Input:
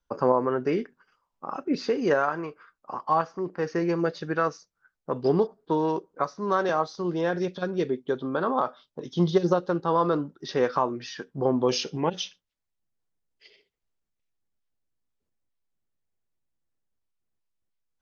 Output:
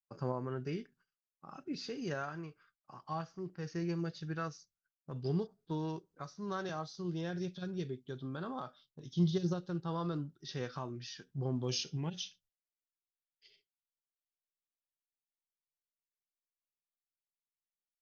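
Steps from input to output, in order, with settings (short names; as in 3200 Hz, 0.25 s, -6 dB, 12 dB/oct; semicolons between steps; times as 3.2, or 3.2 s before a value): ten-band EQ 125 Hz +3 dB, 250 Hz -7 dB, 500 Hz -12 dB, 1000 Hz -11 dB, 2000 Hz -6 dB; expander -60 dBFS; harmonic-percussive split harmonic +5 dB; gain -7 dB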